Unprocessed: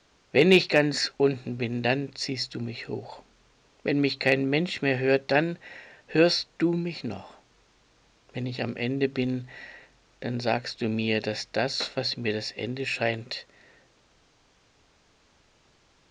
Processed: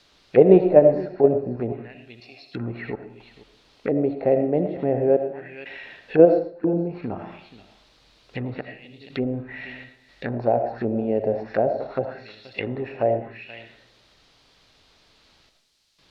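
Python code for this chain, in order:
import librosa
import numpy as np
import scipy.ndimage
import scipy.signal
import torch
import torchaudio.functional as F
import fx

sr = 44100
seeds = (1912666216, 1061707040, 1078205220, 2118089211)

p1 = fx.level_steps(x, sr, step_db=18)
p2 = x + (p1 * 10.0 ** (-1.0 / 20.0))
p3 = fx.vowel_filter(p2, sr, vowel='a', at=(2.05, 2.53), fade=0.02)
p4 = fx.step_gate(p3, sr, bpm=61, pattern='xxxxxxx..xxx.x', floor_db=-24.0, edge_ms=4.5)
p5 = fx.dmg_noise_colour(p4, sr, seeds[0], colour='violet', level_db=-56.0)
p6 = p5 + fx.echo_single(p5, sr, ms=479, db=-18.5, dry=0)
p7 = fx.rev_freeverb(p6, sr, rt60_s=0.49, hf_ratio=0.7, predelay_ms=40, drr_db=6.5)
p8 = fx.envelope_lowpass(p7, sr, base_hz=630.0, top_hz=4500.0, q=2.5, full_db=-21.5, direction='down')
y = p8 * 10.0 ** (-1.5 / 20.0)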